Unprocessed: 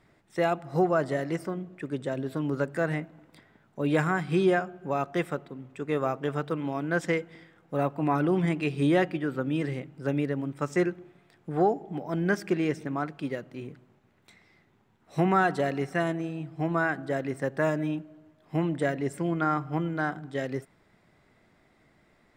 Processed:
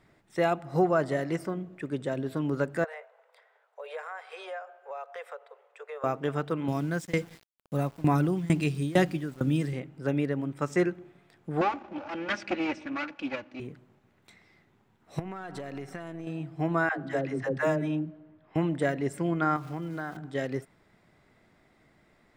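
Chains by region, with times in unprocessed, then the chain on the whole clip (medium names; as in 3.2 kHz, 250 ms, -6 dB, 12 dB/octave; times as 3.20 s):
2.84–6.04 s: steep high-pass 450 Hz 96 dB/octave + treble shelf 2.8 kHz -10 dB + compression 2.5:1, threshold -39 dBFS
6.68–9.73 s: tone controls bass +10 dB, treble +13 dB + tremolo saw down 2.2 Hz, depth 95% + small samples zeroed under -47.5 dBFS
11.61–13.60 s: comb filter that takes the minimum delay 3.5 ms + cabinet simulation 120–6000 Hz, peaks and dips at 170 Hz -7 dB, 420 Hz -5 dB, 1.4 kHz +3 dB, 2.5 kHz +9 dB
15.19–16.27 s: partial rectifier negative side -3 dB + compression 20:1, threshold -33 dBFS
16.89–18.56 s: level-controlled noise filter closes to 2.3 kHz, open at -22.5 dBFS + phase dispersion lows, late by 99 ms, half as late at 410 Hz
19.56–20.17 s: small samples zeroed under -46 dBFS + compression 2.5:1, threshold -33 dBFS
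whole clip: none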